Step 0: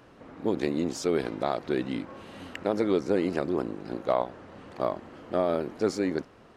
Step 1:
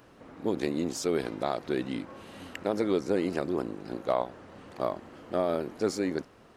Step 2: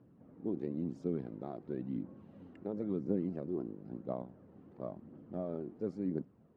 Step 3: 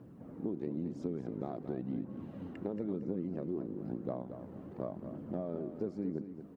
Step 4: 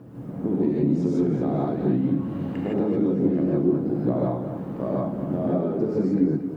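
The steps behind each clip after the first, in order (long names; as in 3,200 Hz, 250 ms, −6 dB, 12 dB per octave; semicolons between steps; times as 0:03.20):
high-shelf EQ 7,600 Hz +9 dB; level −2 dB
resonant band-pass 180 Hz, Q 1.5; phase shifter 0.97 Hz, delay 3 ms, feedback 36%; level −1.5 dB
downward compressor 4 to 1, threshold −44 dBFS, peak gain reduction 14 dB; repeating echo 228 ms, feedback 29%, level −10 dB; level +9 dB
reverb whose tail is shaped and stops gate 190 ms rising, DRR −6 dB; level +8 dB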